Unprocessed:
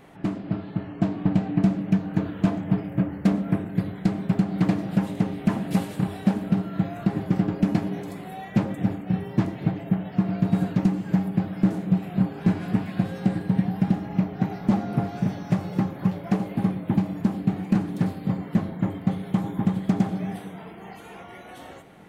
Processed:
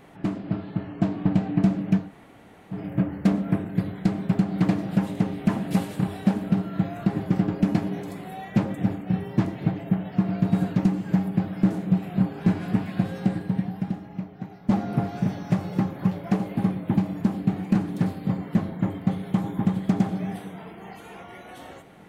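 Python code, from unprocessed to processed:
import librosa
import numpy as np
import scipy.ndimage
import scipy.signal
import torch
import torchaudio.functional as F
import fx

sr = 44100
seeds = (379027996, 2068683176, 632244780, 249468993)

y = fx.edit(x, sr, fx.room_tone_fill(start_s=2.05, length_s=0.72, crossfade_s=0.16),
    fx.fade_out_to(start_s=13.19, length_s=1.5, curve='qua', floor_db=-12.0), tone=tone)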